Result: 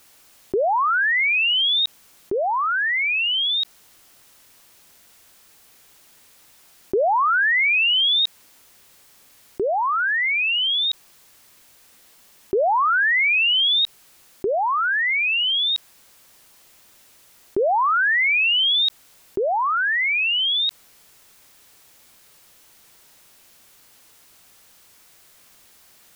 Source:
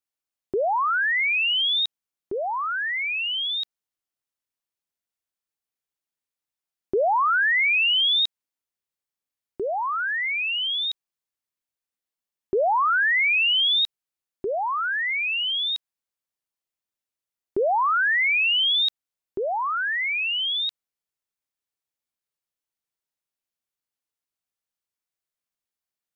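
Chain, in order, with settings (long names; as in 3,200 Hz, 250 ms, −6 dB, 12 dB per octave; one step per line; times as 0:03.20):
envelope flattener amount 50%
level +2 dB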